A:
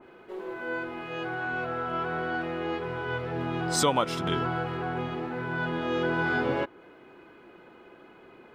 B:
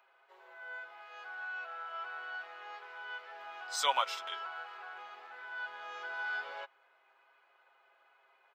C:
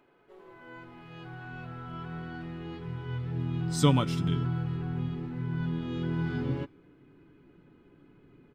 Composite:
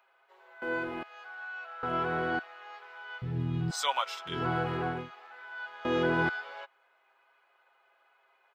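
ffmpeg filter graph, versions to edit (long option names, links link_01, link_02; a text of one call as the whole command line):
ffmpeg -i take0.wav -i take1.wav -i take2.wav -filter_complex "[0:a]asplit=4[link_01][link_02][link_03][link_04];[1:a]asplit=6[link_05][link_06][link_07][link_08][link_09][link_10];[link_05]atrim=end=0.622[link_11];[link_01]atrim=start=0.618:end=1.032[link_12];[link_06]atrim=start=1.028:end=1.832[link_13];[link_02]atrim=start=1.828:end=2.392[link_14];[link_07]atrim=start=2.388:end=3.222[link_15];[2:a]atrim=start=3.218:end=3.712[link_16];[link_08]atrim=start=3.708:end=4.49[link_17];[link_03]atrim=start=4.25:end=5.11[link_18];[link_09]atrim=start=4.87:end=5.852[link_19];[link_04]atrim=start=5.848:end=6.292[link_20];[link_10]atrim=start=6.288[link_21];[link_11][link_12]acrossfade=duration=0.004:curve1=hsin:curve2=hsin[link_22];[link_22][link_13]acrossfade=duration=0.004:curve1=hsin:curve2=hsin[link_23];[link_23][link_14]acrossfade=duration=0.004:curve1=hsin:curve2=hsin[link_24];[link_24][link_15]acrossfade=duration=0.004:curve1=hsin:curve2=hsin[link_25];[link_25][link_16]acrossfade=duration=0.004:curve1=hsin:curve2=hsin[link_26];[link_26][link_17]acrossfade=duration=0.004:curve1=hsin:curve2=hsin[link_27];[link_27][link_18]acrossfade=duration=0.24:curve1=tri:curve2=tri[link_28];[link_28][link_19]acrossfade=duration=0.24:curve1=tri:curve2=tri[link_29];[link_29][link_20]acrossfade=duration=0.004:curve1=hsin:curve2=hsin[link_30];[link_30][link_21]acrossfade=duration=0.004:curve1=hsin:curve2=hsin" out.wav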